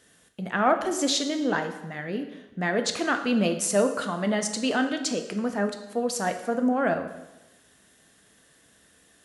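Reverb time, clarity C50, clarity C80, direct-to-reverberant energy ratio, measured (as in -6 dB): 1.0 s, 9.0 dB, 11.5 dB, 6.5 dB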